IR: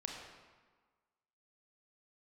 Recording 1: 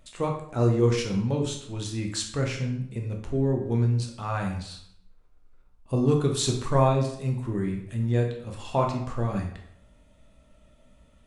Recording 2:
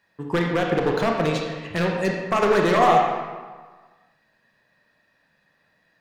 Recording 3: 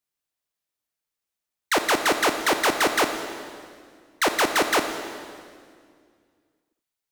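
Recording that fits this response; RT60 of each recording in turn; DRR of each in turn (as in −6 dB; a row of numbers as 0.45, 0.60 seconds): 2; 0.70, 1.5, 2.1 seconds; 1.5, 0.0, 6.0 decibels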